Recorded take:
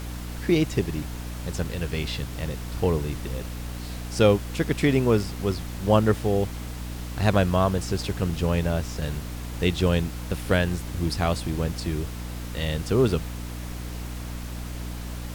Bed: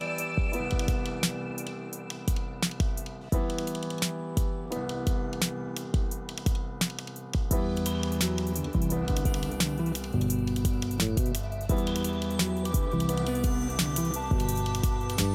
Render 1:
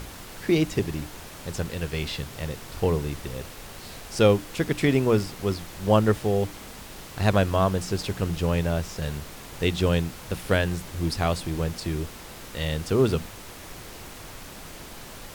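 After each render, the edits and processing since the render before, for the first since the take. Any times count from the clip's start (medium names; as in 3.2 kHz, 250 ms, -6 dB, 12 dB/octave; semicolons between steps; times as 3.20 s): hum notches 60/120/180/240/300 Hz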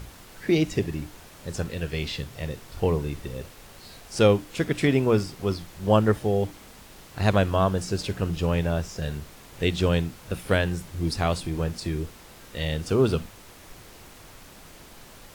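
noise print and reduce 6 dB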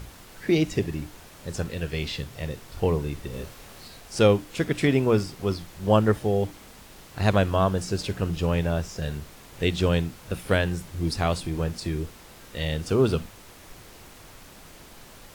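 3.30–3.88 s: doubling 26 ms -2.5 dB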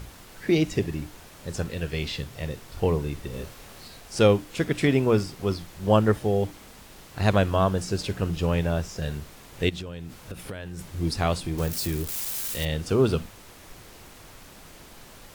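9.69–10.79 s: compression 20:1, threshold -31 dBFS; 11.58–12.65 s: zero-crossing glitches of -24.5 dBFS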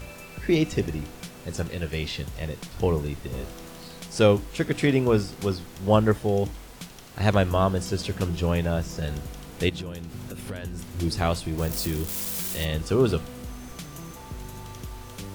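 add bed -12.5 dB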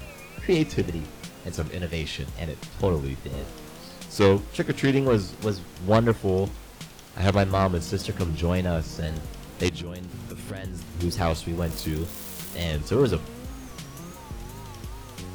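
self-modulated delay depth 0.17 ms; wow and flutter 130 cents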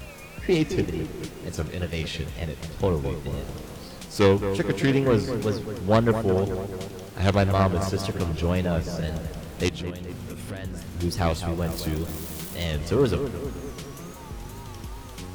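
feedback echo behind a low-pass 217 ms, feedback 56%, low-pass 2 kHz, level -9 dB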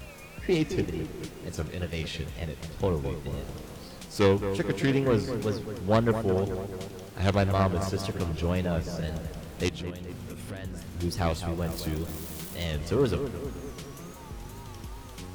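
trim -3.5 dB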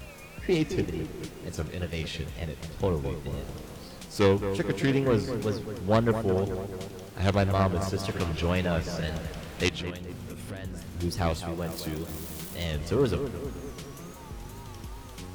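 8.08–9.98 s: peaking EQ 2.3 kHz +6.5 dB 2.7 oct; 11.41–12.11 s: high-pass 140 Hz 6 dB/octave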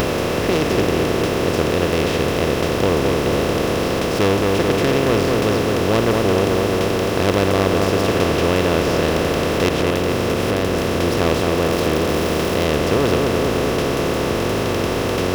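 spectral levelling over time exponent 0.2; upward compressor, threshold -19 dBFS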